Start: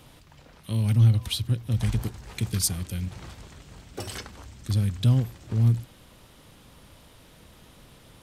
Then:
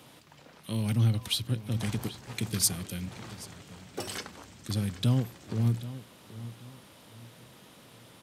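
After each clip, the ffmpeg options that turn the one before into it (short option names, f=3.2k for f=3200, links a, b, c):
-filter_complex "[0:a]highpass=160,asplit=2[a][b];[b]adelay=780,lowpass=f=4.5k:p=1,volume=-15dB,asplit=2[c][d];[d]adelay=780,lowpass=f=4.5k:p=1,volume=0.33,asplit=2[e][f];[f]adelay=780,lowpass=f=4.5k:p=1,volume=0.33[g];[a][c][e][g]amix=inputs=4:normalize=0"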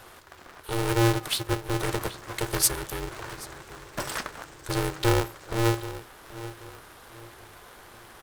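-af "firequalizer=gain_entry='entry(480,0);entry(1300,11);entry(2300,-2);entry(13000,3)':delay=0.05:min_phase=1,aeval=exprs='val(0)*sgn(sin(2*PI*230*n/s))':c=same,volume=2.5dB"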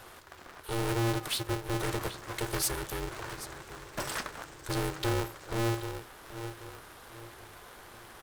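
-af "asoftclip=type=tanh:threshold=-24dB,volume=-1.5dB"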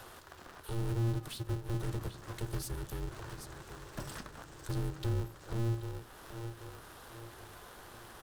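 -filter_complex "[0:a]equalizer=f=2.2k:w=3.6:g=-4.5,acrossover=split=260[a][b];[b]acompressor=threshold=-51dB:ratio=2.5[c];[a][c]amix=inputs=2:normalize=0,volume=1dB"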